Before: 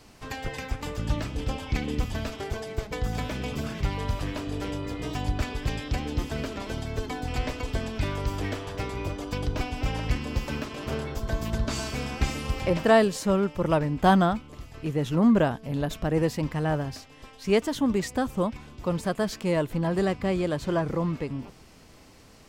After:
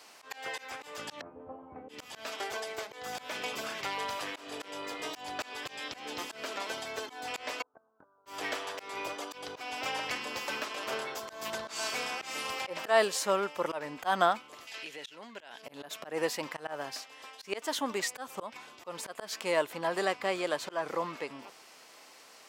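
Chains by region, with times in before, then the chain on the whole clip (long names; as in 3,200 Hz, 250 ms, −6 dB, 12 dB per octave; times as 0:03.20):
0:01.21–0:01.89: low-pass filter 1,100 Hz 24 dB per octave + low-shelf EQ 350 Hz +11.5 dB + tuned comb filter 86 Hz, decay 0.27 s, mix 100%
0:07.62–0:08.26: Butterworth low-pass 1,500 Hz 96 dB per octave + noise gate −22 dBFS, range −32 dB
0:14.67–0:15.62: meter weighting curve D + downward compressor 4 to 1, threshold −38 dBFS + notch filter 1,200 Hz, Q 9
whole clip: high-pass filter 660 Hz 12 dB per octave; volume swells 175 ms; level +2.5 dB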